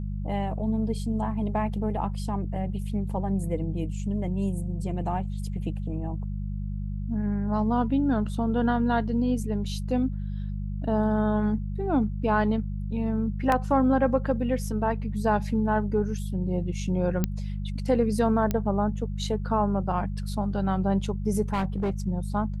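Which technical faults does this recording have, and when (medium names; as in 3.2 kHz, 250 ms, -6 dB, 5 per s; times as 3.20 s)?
hum 50 Hz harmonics 4 -31 dBFS
13.52 s: dropout 2 ms
17.24 s: pop -11 dBFS
18.51 s: pop -13 dBFS
21.53–21.91 s: clipped -22.5 dBFS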